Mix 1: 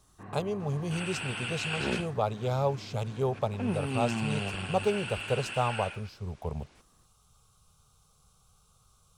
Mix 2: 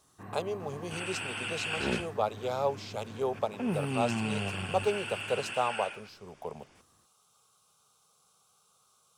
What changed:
speech: add HPF 310 Hz 12 dB/oct; first sound: remove air absorption 80 m; second sound: add notch 4000 Hz, Q 5.5

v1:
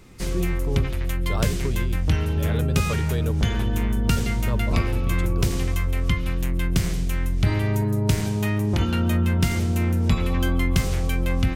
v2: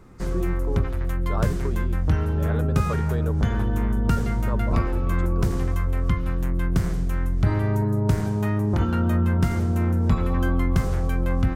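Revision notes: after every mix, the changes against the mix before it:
speech: add elliptic band-pass 180–7900 Hz; master: add resonant high shelf 1900 Hz -9 dB, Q 1.5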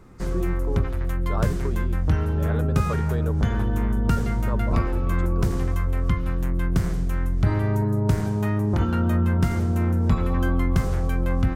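none

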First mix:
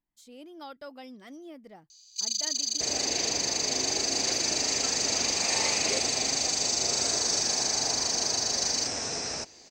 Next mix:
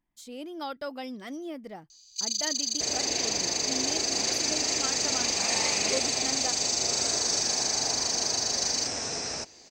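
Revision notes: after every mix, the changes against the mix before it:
speech +7.5 dB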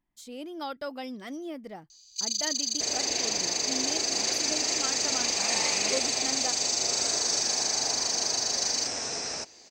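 second sound: add low shelf 210 Hz -7 dB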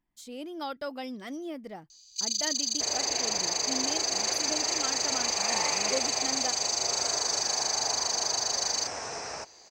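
second sound: add graphic EQ 250/1000/4000/8000 Hz -7/+5/-8/-6 dB

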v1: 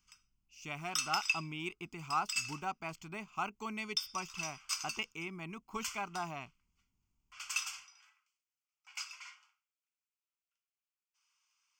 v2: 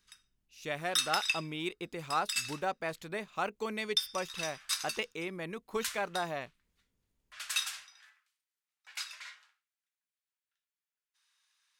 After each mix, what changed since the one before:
master: remove fixed phaser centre 2600 Hz, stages 8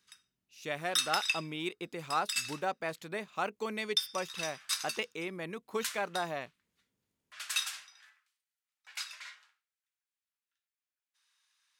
master: add HPF 120 Hz 12 dB/oct

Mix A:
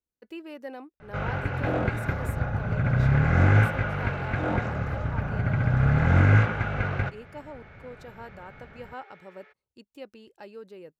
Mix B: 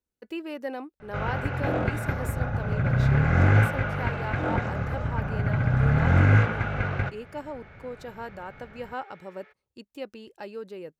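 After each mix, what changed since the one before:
speech +5.5 dB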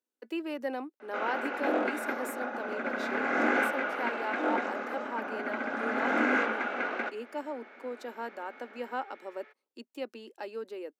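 master: add Chebyshev high-pass 230 Hz, order 6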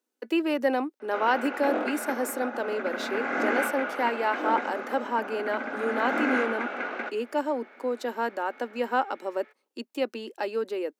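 speech +9.5 dB

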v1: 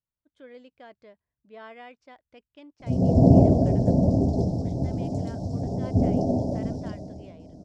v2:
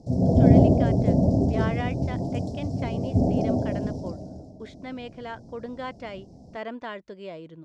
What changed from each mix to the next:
speech +12.0 dB; background: entry -2.80 s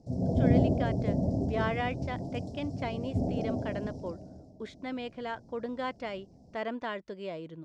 background -8.5 dB

